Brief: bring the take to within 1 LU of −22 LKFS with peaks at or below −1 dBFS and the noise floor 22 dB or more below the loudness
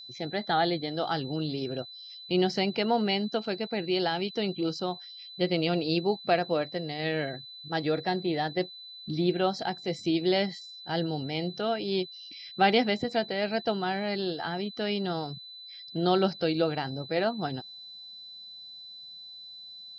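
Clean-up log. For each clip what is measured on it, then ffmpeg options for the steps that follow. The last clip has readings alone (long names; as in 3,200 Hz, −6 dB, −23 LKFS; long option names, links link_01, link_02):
interfering tone 4,000 Hz; level of the tone −43 dBFS; integrated loudness −29.5 LKFS; sample peak −10.5 dBFS; target loudness −22.0 LKFS
→ -af "bandreject=frequency=4000:width=30"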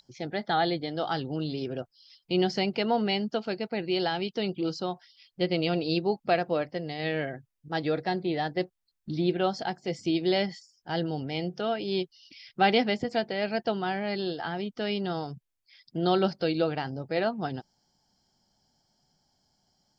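interfering tone none found; integrated loudness −29.5 LKFS; sample peak −11.0 dBFS; target loudness −22.0 LKFS
→ -af "volume=7.5dB"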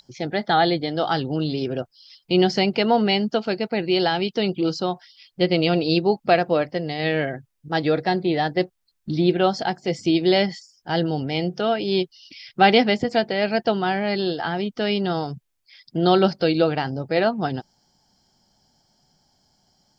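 integrated loudness −22.0 LKFS; sample peak −3.5 dBFS; background noise floor −73 dBFS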